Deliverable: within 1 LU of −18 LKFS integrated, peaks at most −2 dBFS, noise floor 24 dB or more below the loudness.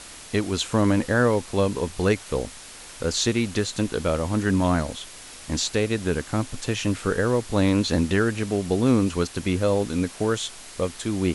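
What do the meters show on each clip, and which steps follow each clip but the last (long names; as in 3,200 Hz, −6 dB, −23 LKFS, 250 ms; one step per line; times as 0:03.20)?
background noise floor −42 dBFS; target noise floor −48 dBFS; integrated loudness −24.0 LKFS; sample peak −6.5 dBFS; target loudness −18.0 LKFS
→ broadband denoise 6 dB, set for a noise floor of −42 dBFS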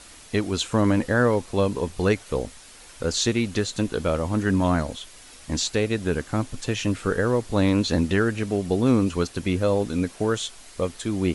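background noise floor −47 dBFS; target noise floor −48 dBFS
→ broadband denoise 6 dB, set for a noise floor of −47 dBFS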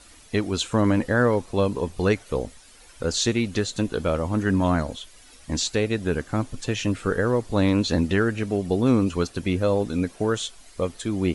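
background noise floor −50 dBFS; integrated loudness −24.5 LKFS; sample peak −7.0 dBFS; target loudness −18.0 LKFS
→ level +6.5 dB
brickwall limiter −2 dBFS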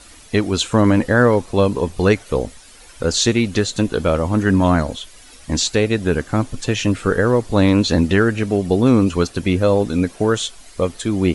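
integrated loudness −18.0 LKFS; sample peak −2.0 dBFS; background noise floor −43 dBFS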